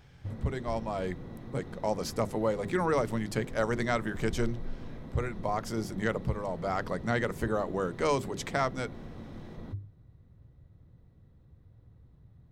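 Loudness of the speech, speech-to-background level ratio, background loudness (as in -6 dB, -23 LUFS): -32.5 LUFS, 12.0 dB, -44.5 LUFS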